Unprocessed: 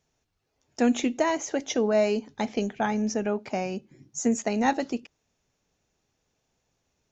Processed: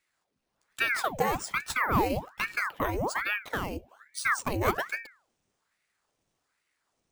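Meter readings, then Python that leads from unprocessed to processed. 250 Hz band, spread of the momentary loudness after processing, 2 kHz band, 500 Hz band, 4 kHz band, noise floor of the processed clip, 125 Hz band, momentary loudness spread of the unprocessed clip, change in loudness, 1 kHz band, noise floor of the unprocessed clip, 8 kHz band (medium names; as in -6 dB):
-10.5 dB, 9 LU, +6.5 dB, -7.5 dB, -0.5 dB, -80 dBFS, +3.0 dB, 9 LU, -2.5 dB, +0.5 dB, -77 dBFS, no reading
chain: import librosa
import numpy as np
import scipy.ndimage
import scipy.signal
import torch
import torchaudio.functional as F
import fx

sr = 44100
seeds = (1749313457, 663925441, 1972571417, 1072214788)

y = np.repeat(x[::3], 3)[:len(x)]
y = fx.hum_notches(y, sr, base_hz=60, count=8)
y = fx.ring_lfo(y, sr, carrier_hz=1100.0, swing_pct=90, hz=1.2)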